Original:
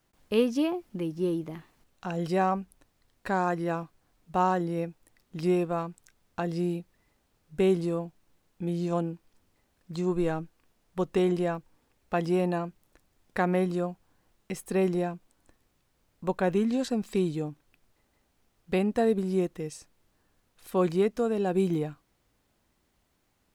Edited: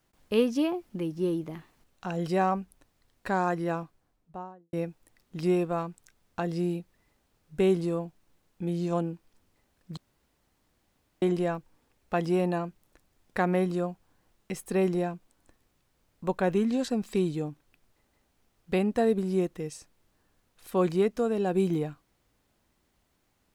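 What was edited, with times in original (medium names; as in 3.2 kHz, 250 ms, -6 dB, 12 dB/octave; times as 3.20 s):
3.65–4.73 s: studio fade out
9.97–11.22 s: room tone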